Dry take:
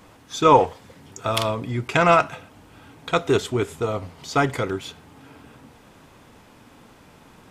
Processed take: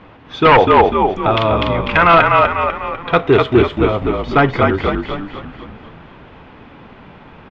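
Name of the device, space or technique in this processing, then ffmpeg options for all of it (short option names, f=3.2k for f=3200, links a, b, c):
synthesiser wavefolder: -filter_complex "[0:a]asettb=1/sr,asplit=3[a][b][c];[a]atrim=end=1.714[d];[b]atrim=start=1.71:end=2.14,asetpts=PTS-STARTPTS,afade=t=in:d=0.004:c=qsin,afade=t=out:st=0.426:d=0.004:c=qsin,lowshelf=f=770:t=q:w=1.5:g=-6.5[e];[c]atrim=start=2.136[f];[d][e]acrossfade=d=0.004:c1=hsin:c2=qsin[g];[g][f]acrossfade=d=0.004:c1=qsin:c2=hsin,asplit=7[h][i][j][k][l][m][n];[i]adelay=248,afreqshift=-43,volume=-3dB[o];[j]adelay=496,afreqshift=-86,volume=-9.2dB[p];[k]adelay=744,afreqshift=-129,volume=-15.4dB[q];[l]adelay=992,afreqshift=-172,volume=-21.6dB[r];[m]adelay=1240,afreqshift=-215,volume=-27.8dB[s];[n]adelay=1488,afreqshift=-258,volume=-34dB[t];[h][o][p][q][r][s][t]amix=inputs=7:normalize=0,aeval=exprs='0.316*(abs(mod(val(0)/0.316+3,4)-2)-1)':c=same,lowpass=f=3.2k:w=0.5412,lowpass=f=3.2k:w=1.3066,volume=8dB"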